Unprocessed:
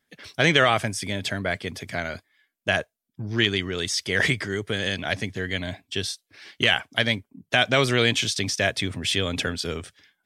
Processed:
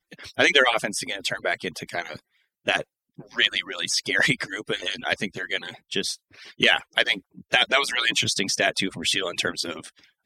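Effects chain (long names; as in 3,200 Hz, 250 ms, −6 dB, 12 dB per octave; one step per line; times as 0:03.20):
harmonic-percussive split with one part muted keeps percussive
level +2.5 dB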